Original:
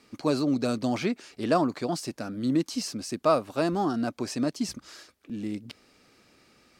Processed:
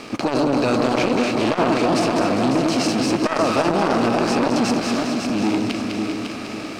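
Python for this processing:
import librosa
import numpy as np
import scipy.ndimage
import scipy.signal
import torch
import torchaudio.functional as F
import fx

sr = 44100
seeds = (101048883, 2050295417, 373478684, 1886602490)

y = fx.bin_compress(x, sr, power=0.6)
y = fx.peak_eq(y, sr, hz=2700.0, db=7.0, octaves=0.72)
y = fx.echo_alternate(y, sr, ms=101, hz=1200.0, feedback_pct=75, wet_db=-4.0)
y = fx.leveller(y, sr, passes=2)
y = fx.high_shelf(y, sr, hz=11000.0, db=-11.5)
y = fx.echo_feedback(y, sr, ms=552, feedback_pct=39, wet_db=-6.5)
y = fx.transformer_sat(y, sr, knee_hz=690.0)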